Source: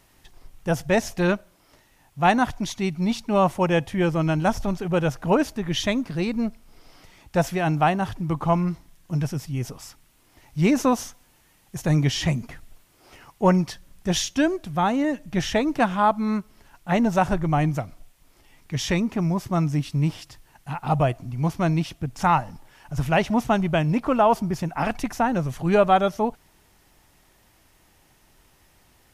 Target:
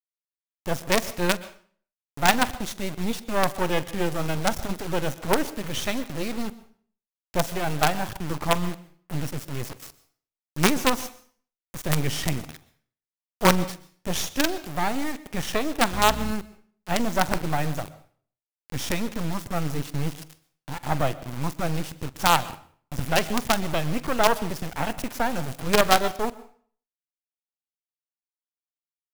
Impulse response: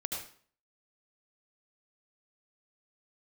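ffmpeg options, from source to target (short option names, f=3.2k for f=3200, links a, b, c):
-filter_complex "[0:a]highshelf=f=11k:g=8.5,acrusher=bits=3:dc=4:mix=0:aa=0.000001,asettb=1/sr,asplit=3[a][b][c];[a]atrim=end=15.924[d];[b]atrim=start=15.92:end=16.32,asetpts=PTS-STARTPTS,afade=t=in:d=0.004:c=qsin,afade=t=out:st=0.396:d=0.004:c=qsin,aeval=exprs='val(0)+0.0251*(sin(2*PI*60*n/s)+sin(2*PI*2*60*n/s)/2+sin(2*PI*3*60*n/s)/3+sin(2*PI*4*60*n/s)/4+sin(2*PI*5*60*n/s)/5)':c=same[e];[c]atrim=start=16.316[f];[d][e]acrossfade=d=0.004:c1=hsin:c2=qsin[g];[g][f]acrossfade=d=0.004:c1=qsin:c2=hsin,asplit=2[h][i];[1:a]atrim=start_sample=2205,adelay=45[j];[i][j]afir=irnorm=-1:irlink=0,volume=-17.5dB[k];[h][k]amix=inputs=2:normalize=0"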